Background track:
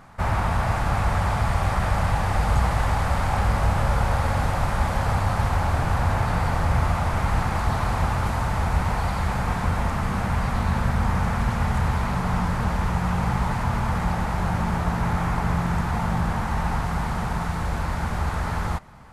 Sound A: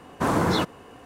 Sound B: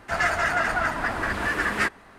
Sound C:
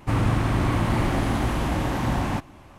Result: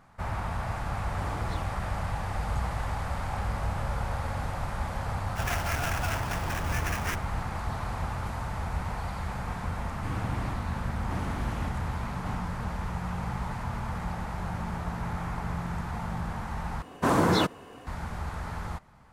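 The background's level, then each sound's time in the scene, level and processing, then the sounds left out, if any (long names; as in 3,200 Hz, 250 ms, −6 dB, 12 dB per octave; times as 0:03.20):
background track −9.5 dB
0:00.98: mix in A −5 dB + downward compressor, threshold −34 dBFS
0:05.27: mix in B −10 dB + sample-rate reduction 4,100 Hz, jitter 20%
0:09.96: mix in C −13.5 dB + square-wave tremolo 0.87 Hz, depth 65%
0:16.82: overwrite with A −0.5 dB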